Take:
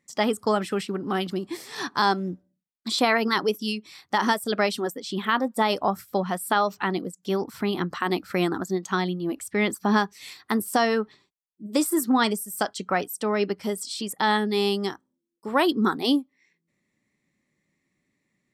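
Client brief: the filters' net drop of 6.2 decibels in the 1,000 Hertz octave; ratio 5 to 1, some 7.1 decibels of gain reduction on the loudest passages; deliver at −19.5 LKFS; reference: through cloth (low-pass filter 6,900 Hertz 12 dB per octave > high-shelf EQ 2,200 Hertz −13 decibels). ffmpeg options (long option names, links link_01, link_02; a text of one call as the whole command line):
ffmpeg -i in.wav -af "equalizer=frequency=1000:width_type=o:gain=-5.5,acompressor=threshold=-26dB:ratio=5,lowpass=6900,highshelf=frequency=2200:gain=-13,volume=13.5dB" out.wav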